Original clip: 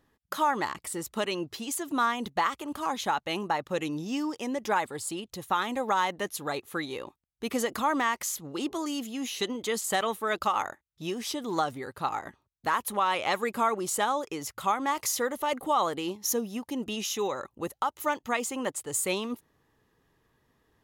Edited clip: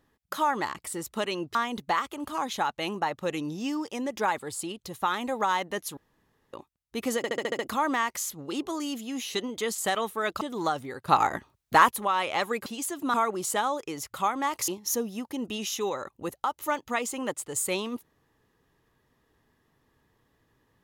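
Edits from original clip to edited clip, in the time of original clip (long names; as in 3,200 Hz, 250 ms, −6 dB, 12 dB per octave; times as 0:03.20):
0:01.55–0:02.03: move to 0:13.58
0:06.45–0:07.01: fill with room tone
0:07.65: stutter 0.07 s, 7 plays
0:10.47–0:11.33: remove
0:12.00–0:12.83: clip gain +9 dB
0:15.12–0:16.06: remove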